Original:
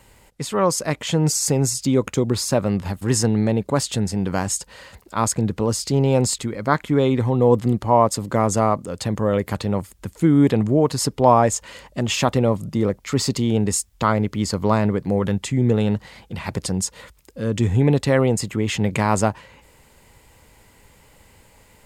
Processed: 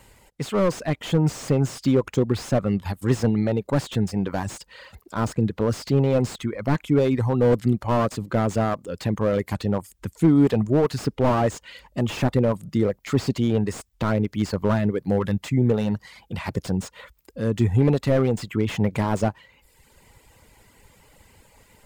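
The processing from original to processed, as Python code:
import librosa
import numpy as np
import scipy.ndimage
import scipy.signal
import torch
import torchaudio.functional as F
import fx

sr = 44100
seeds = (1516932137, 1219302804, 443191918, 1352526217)

y = fx.dereverb_blind(x, sr, rt60_s=0.82)
y = fx.slew_limit(y, sr, full_power_hz=83.0)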